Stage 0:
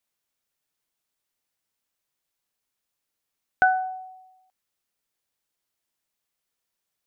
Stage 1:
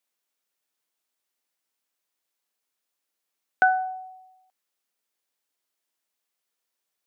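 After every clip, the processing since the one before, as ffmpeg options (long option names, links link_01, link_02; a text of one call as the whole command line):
ffmpeg -i in.wav -af "highpass=240" out.wav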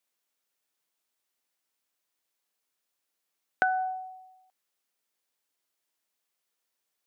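ffmpeg -i in.wav -af "acompressor=threshold=-22dB:ratio=6" out.wav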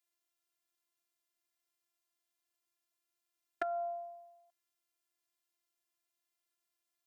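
ffmpeg -i in.wav -af "afftfilt=real='hypot(re,im)*cos(PI*b)':imag='0':win_size=512:overlap=0.75,acompressor=threshold=-34dB:ratio=2,volume=-2dB" out.wav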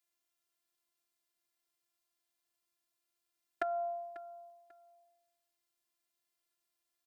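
ffmpeg -i in.wav -af "aecho=1:1:543|1086:0.141|0.0339,volume=1dB" out.wav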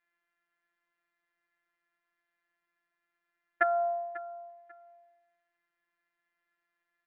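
ffmpeg -i in.wav -af "afftfilt=real='hypot(re,im)*cos(PI*b)':imag='0':win_size=1024:overlap=0.75,lowpass=frequency=1800:width_type=q:width=4.1,volume=6dB" out.wav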